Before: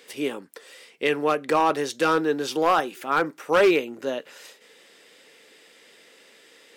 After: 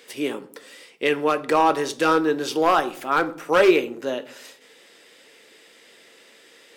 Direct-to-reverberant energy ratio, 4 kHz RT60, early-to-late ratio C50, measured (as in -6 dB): 11.0 dB, 0.40 s, 17.0 dB